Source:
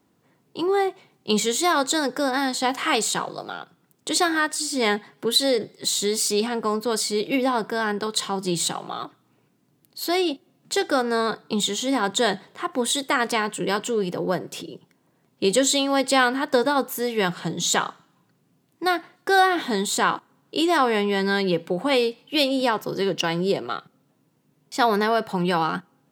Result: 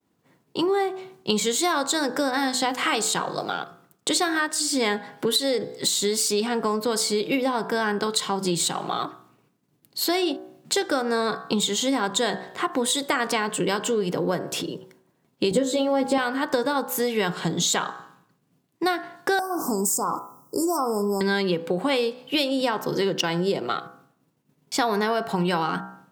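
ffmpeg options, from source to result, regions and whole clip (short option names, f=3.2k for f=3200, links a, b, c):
-filter_complex "[0:a]asettb=1/sr,asplit=3[a][b][c];[a]atrim=end=15.514[d];[b]atrim=start=15.51:end=16.18,asetpts=PTS-STARTPTS,afade=t=in:d=0.004:c=qsin,afade=t=out:st=0.666:d=0.004:c=qsin,tiltshelf=f=1.1k:g=8.5,aeval=exprs='val(0)*gte(abs(val(0)),0.00631)':c=same,asplit=2[e][f];[f]adelay=16,volume=-3.5dB[g];[e][g]amix=inputs=2:normalize=0,atrim=end_sample=29547[h];[c]atrim=start=16.176[i];[d][h]acrossfade=d=0.004:c1=hsin:c2=qsin[j];[j][i]acrossfade=d=0.004:c1=qsin:c2=hsin,asettb=1/sr,asplit=3[k][l][m];[k]atrim=end=19.394[n];[l]atrim=start=19.39:end=21.21,asetpts=PTS-STARTPTS,afade=t=in:d=0.004:c=qsin,afade=t=out:st=1.816:d=0.004:c=qsin,aemphasis=mode=production:type=50fm,acompressor=threshold=-25dB:ratio=2:attack=3.2:release=140:knee=1:detection=peak,asuperstop=centerf=2600:order=20:qfactor=0.71[o];[m]atrim=start=21.206[p];[n][o]acrossfade=d=0.004:c1=hsin:c2=qsin[q];[q][p]acrossfade=d=0.004:c1=qsin:c2=hsin,agate=range=-33dB:threshold=-57dB:ratio=3:detection=peak,bandreject=f=62.75:t=h:w=4,bandreject=f=125.5:t=h:w=4,bandreject=f=188.25:t=h:w=4,bandreject=f=251:t=h:w=4,bandreject=f=313.75:t=h:w=4,bandreject=f=376.5:t=h:w=4,bandreject=f=439.25:t=h:w=4,bandreject=f=502:t=h:w=4,bandreject=f=564.75:t=h:w=4,bandreject=f=627.5:t=h:w=4,bandreject=f=690.25:t=h:w=4,bandreject=f=753:t=h:w=4,bandreject=f=815.75:t=h:w=4,bandreject=f=878.5:t=h:w=4,bandreject=f=941.25:t=h:w=4,bandreject=f=1.004k:t=h:w=4,bandreject=f=1.06675k:t=h:w=4,bandreject=f=1.1295k:t=h:w=4,bandreject=f=1.19225k:t=h:w=4,bandreject=f=1.255k:t=h:w=4,bandreject=f=1.31775k:t=h:w=4,bandreject=f=1.3805k:t=h:w=4,bandreject=f=1.44325k:t=h:w=4,bandreject=f=1.506k:t=h:w=4,bandreject=f=1.56875k:t=h:w=4,bandreject=f=1.6315k:t=h:w=4,bandreject=f=1.69425k:t=h:w=4,bandreject=f=1.757k:t=h:w=4,bandreject=f=1.81975k:t=h:w=4,acompressor=threshold=-28dB:ratio=4,volume=6.5dB"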